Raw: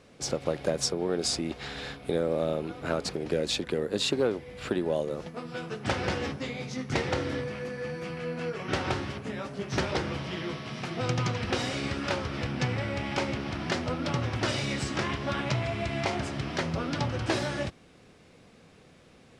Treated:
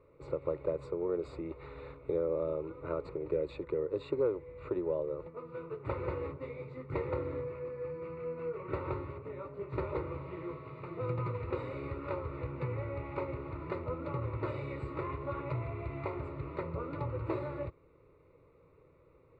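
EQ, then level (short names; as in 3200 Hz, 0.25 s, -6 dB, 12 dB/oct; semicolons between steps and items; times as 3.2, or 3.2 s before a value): running mean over 14 samples; air absorption 100 m; fixed phaser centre 1100 Hz, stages 8; -2.0 dB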